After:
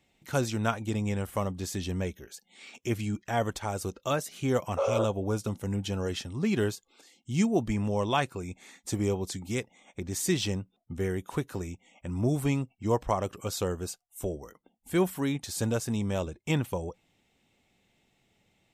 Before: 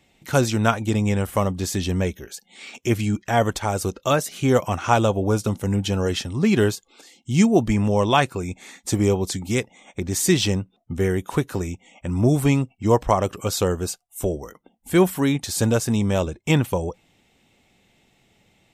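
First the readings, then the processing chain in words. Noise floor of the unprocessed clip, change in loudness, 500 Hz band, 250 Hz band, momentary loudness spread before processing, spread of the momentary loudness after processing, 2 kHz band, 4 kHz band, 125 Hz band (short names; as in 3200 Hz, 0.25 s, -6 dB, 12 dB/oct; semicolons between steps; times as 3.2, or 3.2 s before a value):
-63 dBFS, -9.0 dB, -8.5 dB, -9.0 dB, 11 LU, 11 LU, -9.0 dB, -9.0 dB, -9.0 dB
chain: spectral repair 4.8–5.02, 430–2000 Hz after; gain -9 dB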